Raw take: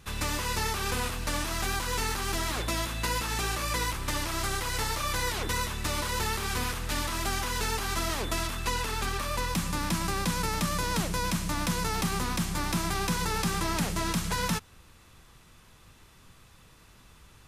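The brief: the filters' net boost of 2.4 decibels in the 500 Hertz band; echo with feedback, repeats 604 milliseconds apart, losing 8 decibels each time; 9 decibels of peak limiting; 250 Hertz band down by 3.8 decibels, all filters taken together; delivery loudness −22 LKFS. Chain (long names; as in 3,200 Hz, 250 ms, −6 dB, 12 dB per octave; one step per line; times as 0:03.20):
parametric band 250 Hz −7.5 dB
parametric band 500 Hz +5 dB
brickwall limiter −26 dBFS
repeating echo 604 ms, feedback 40%, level −8 dB
level +12.5 dB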